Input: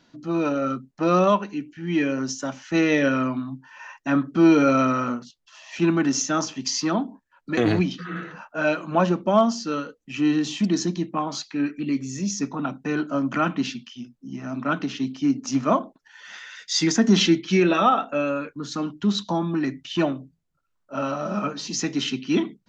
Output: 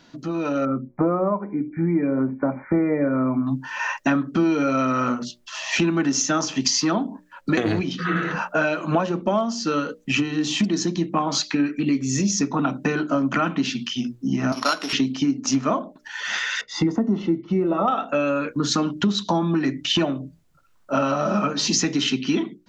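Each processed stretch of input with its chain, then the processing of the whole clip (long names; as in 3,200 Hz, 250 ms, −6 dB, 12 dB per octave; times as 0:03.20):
0:00.65–0:03.47: linear-phase brick-wall low-pass 2,400 Hz + parametric band 1,800 Hz −12.5 dB 0.87 octaves
0:14.52–0:14.93: samples sorted by size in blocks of 8 samples + band-pass filter 600–5,300 Hz
0:16.61–0:17.88: Savitzky-Golay smoothing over 65 samples + floating-point word with a short mantissa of 8 bits
whole clip: downward compressor 10 to 1, threshold −33 dBFS; mains-hum notches 60/120/180/240/300/360/420/480/540/600 Hz; automatic gain control gain up to 8 dB; level +7 dB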